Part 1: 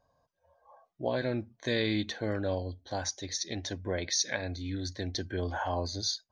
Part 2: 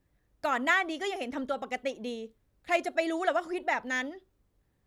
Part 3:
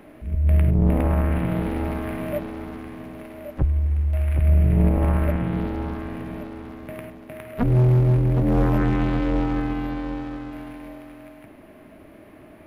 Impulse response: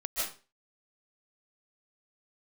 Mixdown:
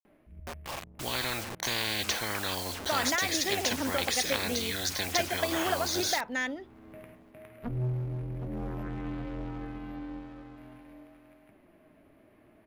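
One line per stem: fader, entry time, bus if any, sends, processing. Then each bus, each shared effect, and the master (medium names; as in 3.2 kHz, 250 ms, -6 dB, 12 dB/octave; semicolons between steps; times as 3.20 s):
+0.5 dB, 0.00 s, no send, peaking EQ 73 Hz +15 dB 2.3 oct; bit crusher 9-bit; spectrum-flattening compressor 10:1
+2.0 dB, 2.45 s, no send, compression, threshold -29 dBFS, peak gain reduction 9 dB
-9.0 dB, 0.05 s, no send, compression 4:1, threshold -19 dBFS, peak gain reduction 5.5 dB; flange 0.35 Hz, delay 4.9 ms, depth 5.5 ms, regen +71%; auto duck -18 dB, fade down 0.90 s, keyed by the first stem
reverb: none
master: none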